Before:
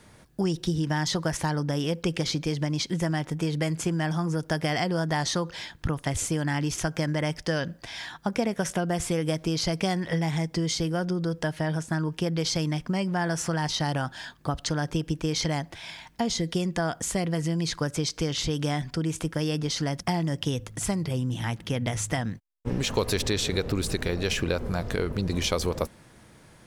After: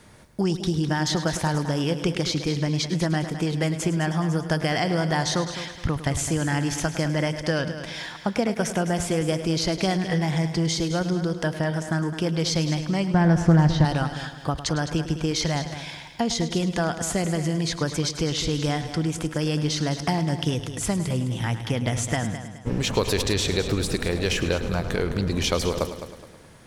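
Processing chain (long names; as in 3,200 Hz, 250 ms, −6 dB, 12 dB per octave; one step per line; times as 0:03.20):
0:13.14–0:13.85: RIAA equalisation playback
echo machine with several playback heads 105 ms, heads first and second, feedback 44%, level −13 dB
highs frequency-modulated by the lows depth 0.14 ms
level +2.5 dB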